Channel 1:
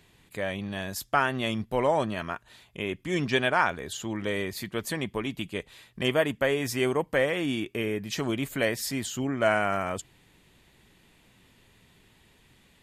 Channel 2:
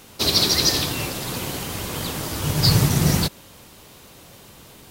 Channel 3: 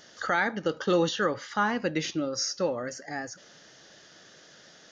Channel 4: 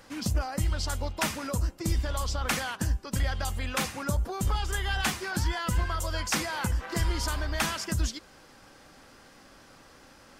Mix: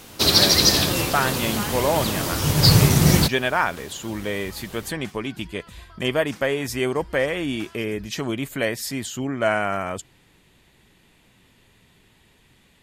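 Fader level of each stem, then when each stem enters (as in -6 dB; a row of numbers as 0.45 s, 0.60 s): +2.5 dB, +2.5 dB, -7.5 dB, -17.0 dB; 0.00 s, 0.00 s, 0.00 s, 0.00 s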